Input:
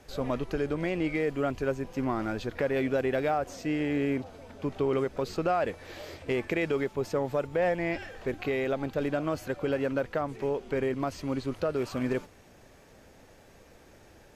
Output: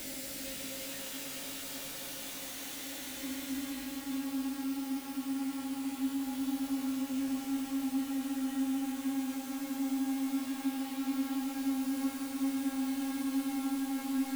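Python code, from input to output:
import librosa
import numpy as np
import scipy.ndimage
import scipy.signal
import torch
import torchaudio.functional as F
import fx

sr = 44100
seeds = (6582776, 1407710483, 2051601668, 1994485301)

y = fx.vocoder_glide(x, sr, note=62, semitones=-5)
y = scipy.signal.sosfilt(scipy.signal.butter(6, 260.0, 'highpass', fs=sr, output='sos'), y)
y = fx.quant_dither(y, sr, seeds[0], bits=6, dither='triangular')
y = fx.rotary_switch(y, sr, hz=7.5, then_hz=0.85, switch_at_s=0.71)
y = 10.0 ** (-35.5 / 20.0) * np.tanh(y / 10.0 ** (-35.5 / 20.0))
y = fx.paulstretch(y, sr, seeds[1], factor=24.0, window_s=0.1, from_s=3.53)
y = fx.doubler(y, sr, ms=19.0, db=-5.5)
y = fx.echo_stepped(y, sr, ms=449, hz=2800.0, octaves=-1.4, feedback_pct=70, wet_db=-0.5)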